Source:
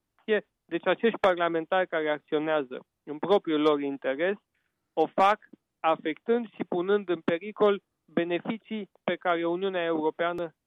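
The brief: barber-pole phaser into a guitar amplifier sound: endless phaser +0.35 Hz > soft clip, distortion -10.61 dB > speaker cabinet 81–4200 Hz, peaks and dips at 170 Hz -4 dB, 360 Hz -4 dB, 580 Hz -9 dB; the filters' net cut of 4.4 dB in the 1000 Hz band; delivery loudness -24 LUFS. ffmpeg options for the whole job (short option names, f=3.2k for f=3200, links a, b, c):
-filter_complex "[0:a]equalizer=f=1k:t=o:g=-4.5,asplit=2[a][b];[b]afreqshift=0.35[c];[a][c]amix=inputs=2:normalize=1,asoftclip=threshold=-26dB,highpass=81,equalizer=f=170:t=q:w=4:g=-4,equalizer=f=360:t=q:w=4:g=-4,equalizer=f=580:t=q:w=4:g=-9,lowpass=f=4.2k:w=0.5412,lowpass=f=4.2k:w=1.3066,volume=15dB"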